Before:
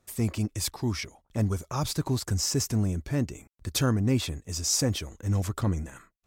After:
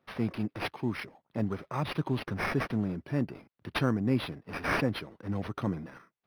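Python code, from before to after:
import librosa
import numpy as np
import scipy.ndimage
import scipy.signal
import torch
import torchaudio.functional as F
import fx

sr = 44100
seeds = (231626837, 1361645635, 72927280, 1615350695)

y = scipy.signal.sosfilt(scipy.signal.butter(4, 130.0, 'highpass', fs=sr, output='sos'), x)
y = np.interp(np.arange(len(y)), np.arange(len(y))[::6], y[::6])
y = F.gain(torch.from_numpy(y), -1.5).numpy()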